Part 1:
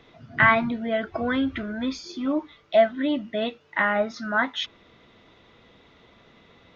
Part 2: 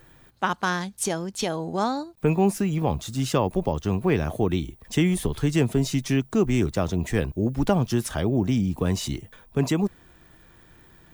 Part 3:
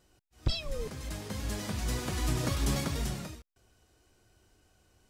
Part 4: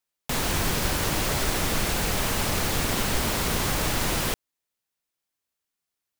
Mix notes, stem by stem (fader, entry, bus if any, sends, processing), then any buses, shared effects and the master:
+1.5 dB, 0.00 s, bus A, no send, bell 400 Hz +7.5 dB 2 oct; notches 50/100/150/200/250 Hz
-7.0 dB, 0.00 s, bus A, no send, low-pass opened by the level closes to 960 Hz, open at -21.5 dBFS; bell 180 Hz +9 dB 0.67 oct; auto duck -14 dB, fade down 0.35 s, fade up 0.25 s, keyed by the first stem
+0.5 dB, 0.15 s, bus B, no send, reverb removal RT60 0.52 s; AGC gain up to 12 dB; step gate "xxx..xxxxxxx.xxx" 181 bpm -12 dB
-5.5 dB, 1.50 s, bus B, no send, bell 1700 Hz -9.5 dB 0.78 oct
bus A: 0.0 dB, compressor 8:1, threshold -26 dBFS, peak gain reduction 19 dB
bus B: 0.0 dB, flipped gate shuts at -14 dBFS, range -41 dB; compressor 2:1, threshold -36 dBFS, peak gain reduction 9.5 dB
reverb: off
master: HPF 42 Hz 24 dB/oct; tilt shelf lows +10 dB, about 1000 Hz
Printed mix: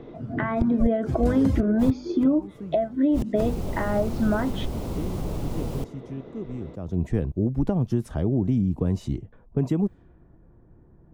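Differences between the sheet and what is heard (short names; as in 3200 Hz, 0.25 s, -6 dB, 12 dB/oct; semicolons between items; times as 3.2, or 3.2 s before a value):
stem 2: missing bell 180 Hz +9 dB 0.67 oct; master: missing HPF 42 Hz 24 dB/oct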